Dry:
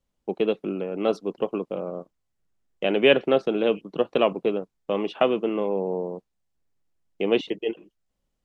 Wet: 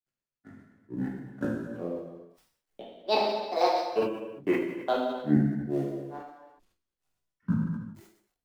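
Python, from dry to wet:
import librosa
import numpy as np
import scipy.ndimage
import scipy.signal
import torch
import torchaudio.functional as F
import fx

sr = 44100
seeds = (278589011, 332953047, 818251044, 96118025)

y = fx.law_mismatch(x, sr, coded='A')
y = fx.granulator(y, sr, seeds[0], grain_ms=239.0, per_s=2.3, spray_ms=24.0, spread_st=12)
y = fx.harmonic_tremolo(y, sr, hz=3.2, depth_pct=70, crossover_hz=470.0)
y = fx.rev_gated(y, sr, seeds[1], gate_ms=420, shape='falling', drr_db=-4.0)
y = fx.sustainer(y, sr, db_per_s=94.0)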